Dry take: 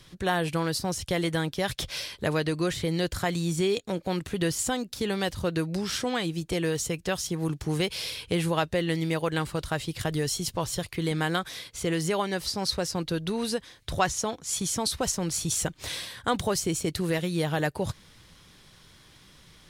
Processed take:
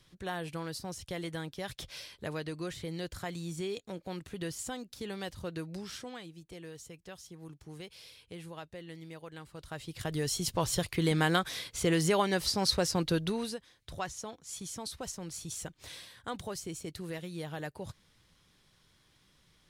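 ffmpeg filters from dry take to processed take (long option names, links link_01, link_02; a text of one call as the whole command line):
ffmpeg -i in.wav -af "volume=8dB,afade=type=out:start_time=5.75:duration=0.56:silence=0.398107,afade=type=in:start_time=9.5:duration=0.39:silence=0.354813,afade=type=in:start_time=9.89:duration=0.84:silence=0.316228,afade=type=out:start_time=13.15:duration=0.43:silence=0.237137" out.wav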